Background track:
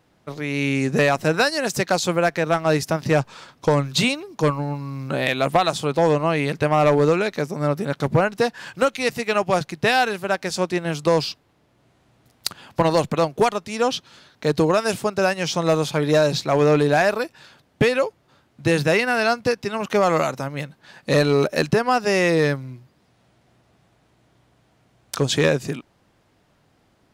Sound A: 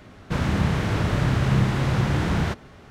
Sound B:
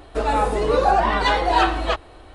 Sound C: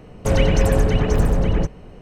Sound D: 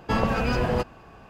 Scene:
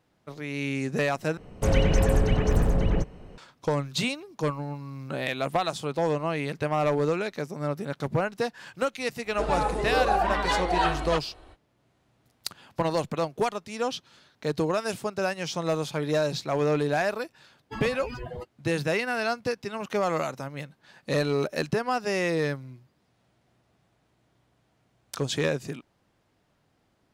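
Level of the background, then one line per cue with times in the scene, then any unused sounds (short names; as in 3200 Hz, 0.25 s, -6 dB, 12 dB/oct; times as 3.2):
background track -8 dB
1.37 replace with C -5 dB
9.23 add B -7 dB, fades 0.05 s
17.62 add D -8 dB + per-bin expansion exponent 3
not used: A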